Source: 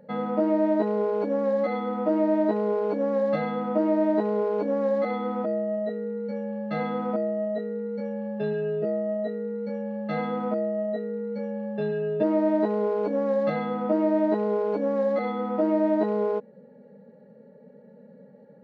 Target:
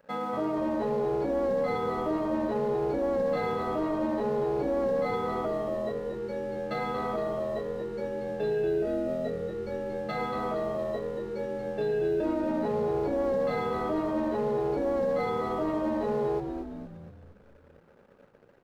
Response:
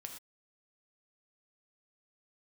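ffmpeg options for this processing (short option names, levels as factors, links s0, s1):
-filter_complex "[0:a]bass=f=250:g=-9,treble=f=4000:g=7,aecho=1:1:7.2:0.32,alimiter=limit=0.075:level=0:latency=1:release=21,aeval=exprs='sgn(val(0))*max(abs(val(0))-0.00211,0)':c=same,asplit=8[s0][s1][s2][s3][s4][s5][s6][s7];[s1]adelay=232,afreqshift=-83,volume=0.447[s8];[s2]adelay=464,afreqshift=-166,volume=0.245[s9];[s3]adelay=696,afreqshift=-249,volume=0.135[s10];[s4]adelay=928,afreqshift=-332,volume=0.0741[s11];[s5]adelay=1160,afreqshift=-415,volume=0.0407[s12];[s6]adelay=1392,afreqshift=-498,volume=0.0224[s13];[s7]adelay=1624,afreqshift=-581,volume=0.0123[s14];[s0][s8][s9][s10][s11][s12][s13][s14]amix=inputs=8:normalize=0"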